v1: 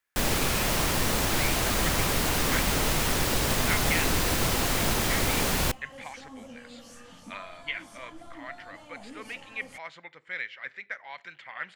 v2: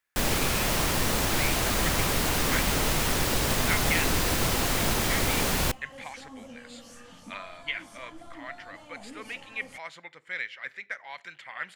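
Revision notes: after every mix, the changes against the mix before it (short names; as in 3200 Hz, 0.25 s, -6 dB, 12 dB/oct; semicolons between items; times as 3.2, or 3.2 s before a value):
speech: remove air absorption 86 m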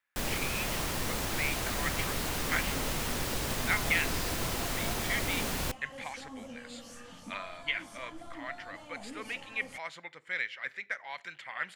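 first sound -7.5 dB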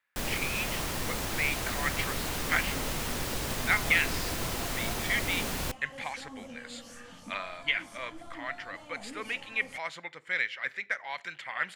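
speech +4.0 dB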